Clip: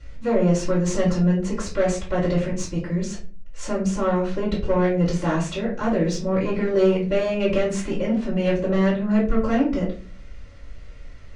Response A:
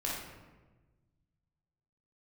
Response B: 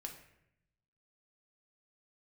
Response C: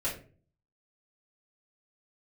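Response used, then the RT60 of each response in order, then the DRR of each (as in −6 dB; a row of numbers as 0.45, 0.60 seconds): C; 1.3, 0.75, 0.40 seconds; −5.0, 2.5, −9.5 decibels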